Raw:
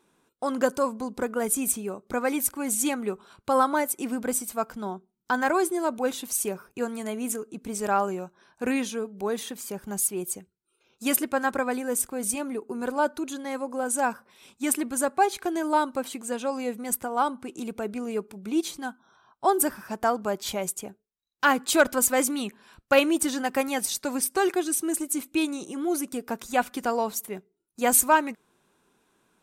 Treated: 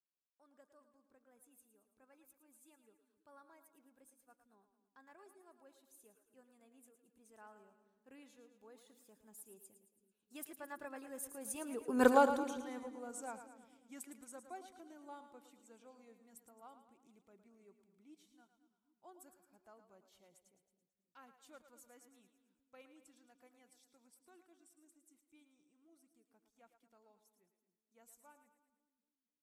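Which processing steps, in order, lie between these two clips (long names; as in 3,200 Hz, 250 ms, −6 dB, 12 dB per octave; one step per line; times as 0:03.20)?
source passing by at 0:12.06, 22 m/s, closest 1.3 metres
echo with a time of its own for lows and highs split 350 Hz, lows 263 ms, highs 110 ms, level −10 dB
level +4 dB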